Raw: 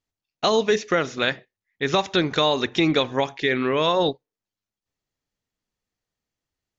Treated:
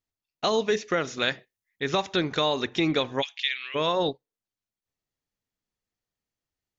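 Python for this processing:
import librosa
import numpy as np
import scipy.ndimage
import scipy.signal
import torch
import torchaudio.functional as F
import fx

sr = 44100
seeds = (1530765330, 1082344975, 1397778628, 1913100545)

y = fx.high_shelf(x, sr, hz=5200.0, db=10.0, at=(1.07, 1.83))
y = fx.highpass_res(y, sr, hz=2900.0, q=2.9, at=(3.21, 3.74), fade=0.02)
y = F.gain(torch.from_numpy(y), -4.5).numpy()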